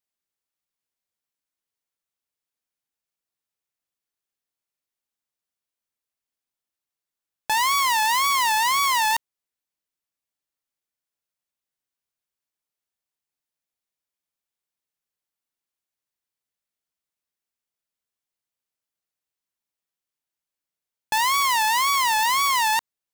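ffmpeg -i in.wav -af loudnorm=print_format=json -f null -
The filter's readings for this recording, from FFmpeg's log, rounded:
"input_i" : "-20.0",
"input_tp" : "-13.8",
"input_lra" : "5.4",
"input_thresh" : "-30.1",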